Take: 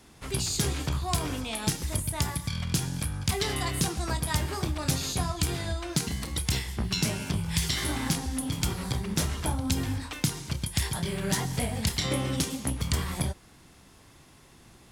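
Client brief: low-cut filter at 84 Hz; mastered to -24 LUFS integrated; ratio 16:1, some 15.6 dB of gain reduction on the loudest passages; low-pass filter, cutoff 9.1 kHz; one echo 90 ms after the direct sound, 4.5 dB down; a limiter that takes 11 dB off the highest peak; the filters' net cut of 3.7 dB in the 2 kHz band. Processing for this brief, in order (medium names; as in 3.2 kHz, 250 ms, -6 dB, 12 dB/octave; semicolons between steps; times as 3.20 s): high-pass 84 Hz; low-pass 9.1 kHz; peaking EQ 2 kHz -4.5 dB; compression 16:1, threshold -39 dBFS; peak limiter -33.5 dBFS; delay 90 ms -4.5 dB; trim +19.5 dB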